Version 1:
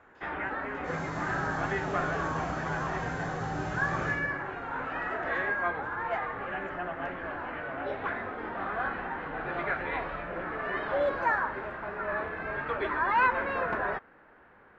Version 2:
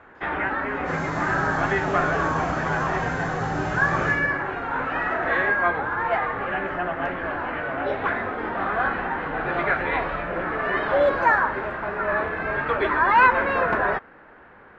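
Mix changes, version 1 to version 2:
first sound +8.5 dB; second sound: send +6.5 dB

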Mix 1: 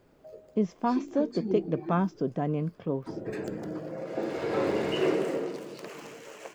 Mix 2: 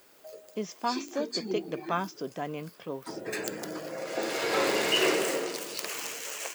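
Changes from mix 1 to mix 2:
background +4.5 dB; master: add tilt EQ +4.5 dB/octave

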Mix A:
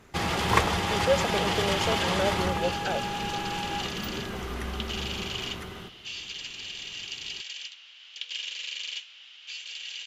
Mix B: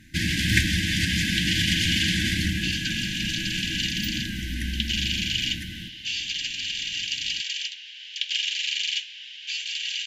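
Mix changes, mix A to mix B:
first sound +5.5 dB; second sound +8.5 dB; master: add brick-wall FIR band-stop 340–1500 Hz

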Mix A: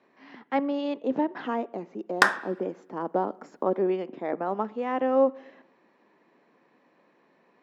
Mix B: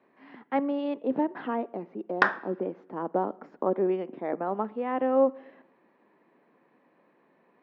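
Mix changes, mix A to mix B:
background: send -6.5 dB; master: add distance through air 300 m

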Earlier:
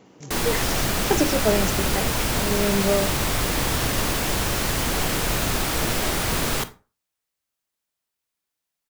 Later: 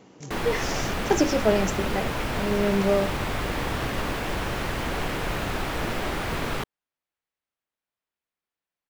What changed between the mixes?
background: add tone controls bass -2 dB, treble -14 dB; reverb: off

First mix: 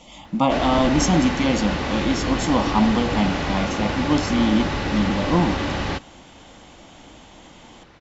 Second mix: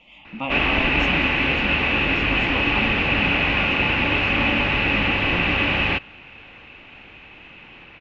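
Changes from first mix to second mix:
speech -11.5 dB; master: add resonant low-pass 2.6 kHz, resonance Q 8.5

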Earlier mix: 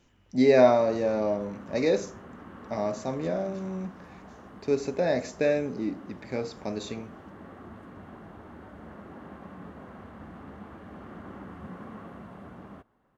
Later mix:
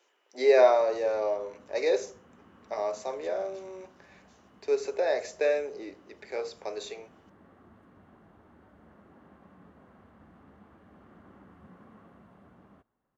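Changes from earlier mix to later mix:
speech: add Chebyshev high-pass 390 Hz, order 4; background -11.5 dB

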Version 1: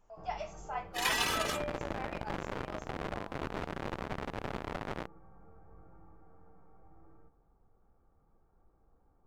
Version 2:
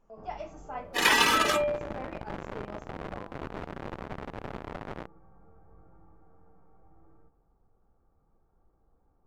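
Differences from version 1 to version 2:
speech: remove steep high-pass 580 Hz; second sound +12.0 dB; master: add treble shelf 2.7 kHz -7 dB

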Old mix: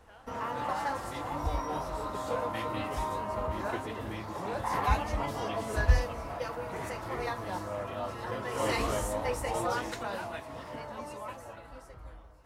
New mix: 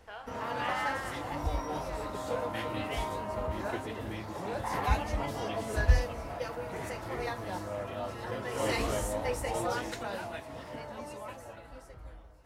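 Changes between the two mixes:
speech +11.0 dB; background: add peaking EQ 1.1 kHz -5 dB 0.55 oct

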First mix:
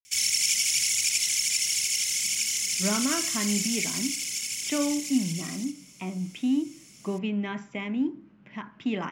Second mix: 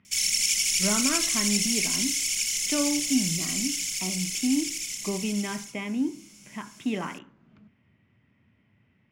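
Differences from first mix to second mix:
speech: entry -2.00 s; background: remove high-pass 58 Hz

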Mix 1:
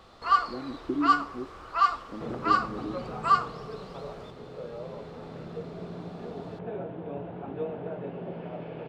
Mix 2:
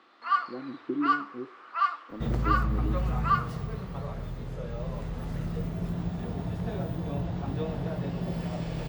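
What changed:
first sound: add band-pass filter 1.8 kHz, Q 1.2; second sound: remove cabinet simulation 320–2500 Hz, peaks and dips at 430 Hz +5 dB, 1.1 kHz -5 dB, 1.9 kHz -8 dB; master: add bass shelf 130 Hz -7 dB

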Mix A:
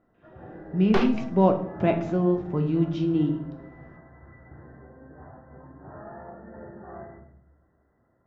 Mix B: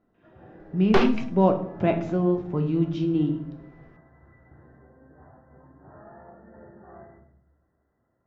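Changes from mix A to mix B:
first sound -5.5 dB; second sound +4.0 dB

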